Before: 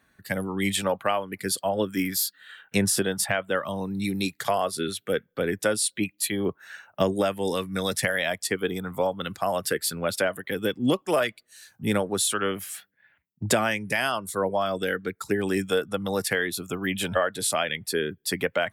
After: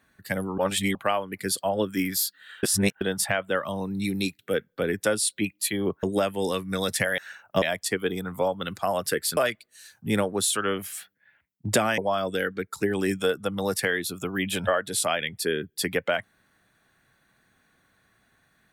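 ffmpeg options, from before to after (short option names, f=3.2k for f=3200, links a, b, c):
-filter_complex "[0:a]asplit=11[a][b][c][d][e][f][g][h][i][j][k];[a]atrim=end=0.582[l];[b]atrim=start=0.578:end=0.952,asetpts=PTS-STARTPTS,areverse[m];[c]atrim=start=0.948:end=2.632[n];[d]atrim=start=2.628:end=3.012,asetpts=PTS-STARTPTS,areverse[o];[e]atrim=start=3.008:end=4.392[p];[f]atrim=start=4.978:end=6.622[q];[g]atrim=start=7.058:end=8.212[r];[h]atrim=start=6.618:end=7.062[s];[i]atrim=start=8.208:end=9.962[t];[j]atrim=start=11.138:end=13.752[u];[k]atrim=start=14.458[v];[l][m]acrossfade=d=0.004:c1=hsin:c2=hsin[w];[w][n]acrossfade=d=0.004:c1=hsin:c2=hsin[x];[x][o]acrossfade=d=0.004:c1=hsin:c2=hsin[y];[y][p]acrossfade=d=0.004:c1=hsin:c2=hsin[z];[z][q]acrossfade=d=0.004:c1=hsin:c2=hsin[aa];[aa][r]acrossfade=d=0.004:c1=hsin:c2=hsin[ab];[ab][s]acrossfade=d=0.004:c1=hsin:c2=hsin[ac];[ac][t]acrossfade=d=0.004:c1=hsin:c2=hsin[ad];[ad][u]acrossfade=d=0.004:c1=hsin:c2=hsin[ae];[ae][v]acrossfade=d=0.004:c1=hsin:c2=hsin"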